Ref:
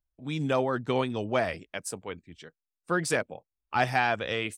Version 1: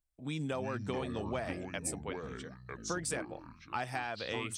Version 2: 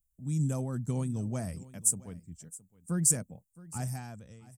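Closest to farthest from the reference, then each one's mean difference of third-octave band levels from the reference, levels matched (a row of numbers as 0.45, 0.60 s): 1, 2; 7.0, 10.5 dB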